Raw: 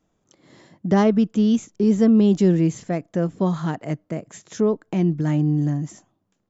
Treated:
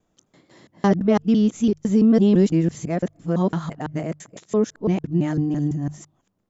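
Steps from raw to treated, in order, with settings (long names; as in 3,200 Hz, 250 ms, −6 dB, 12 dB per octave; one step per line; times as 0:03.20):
reversed piece by piece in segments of 168 ms
mains-hum notches 50/100/150 Hz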